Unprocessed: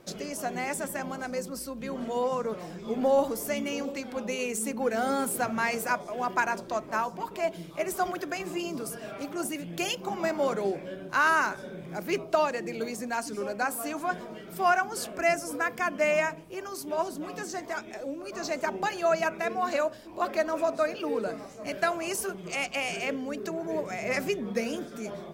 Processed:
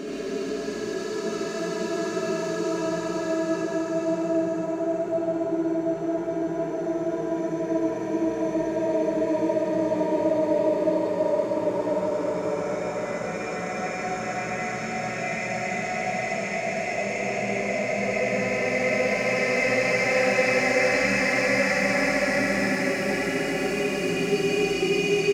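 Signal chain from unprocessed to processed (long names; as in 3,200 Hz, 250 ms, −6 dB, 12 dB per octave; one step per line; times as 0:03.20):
low-pass filter 8,400 Hz 12 dB per octave
hard clipping −19 dBFS, distortion −18 dB
extreme stretch with random phases 28×, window 0.25 s, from 0:23.40
loudspeakers that aren't time-aligned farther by 26 metres −1 dB, 45 metres −2 dB
level +2.5 dB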